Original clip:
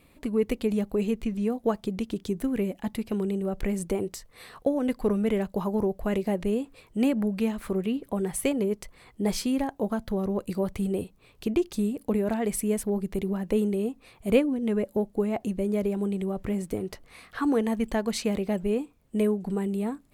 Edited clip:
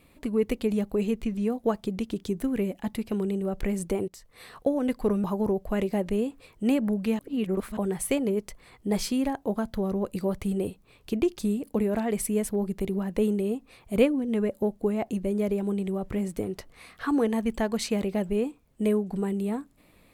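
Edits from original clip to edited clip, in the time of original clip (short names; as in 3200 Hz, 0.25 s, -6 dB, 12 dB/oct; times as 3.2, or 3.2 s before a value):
4.08–4.56 fade in equal-power, from -15 dB
5.24–5.58 cut
7.53–8.11 reverse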